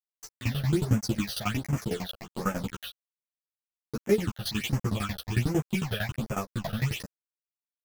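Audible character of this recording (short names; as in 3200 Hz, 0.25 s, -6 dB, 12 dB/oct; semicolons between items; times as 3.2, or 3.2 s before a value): a quantiser's noise floor 6-bit, dither none; phasing stages 8, 1.3 Hz, lowest notch 280–4000 Hz; tremolo saw down 11 Hz, depth 95%; a shimmering, thickened sound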